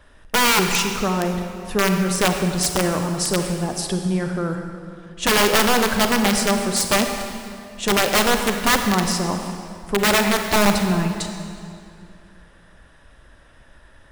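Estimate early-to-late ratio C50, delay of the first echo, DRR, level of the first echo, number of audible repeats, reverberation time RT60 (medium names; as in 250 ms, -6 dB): 5.5 dB, no echo, 5.0 dB, no echo, no echo, 2.5 s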